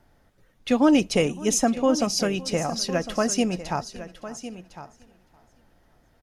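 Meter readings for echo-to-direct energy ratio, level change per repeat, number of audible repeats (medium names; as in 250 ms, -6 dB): -12.5 dB, no regular repeats, 4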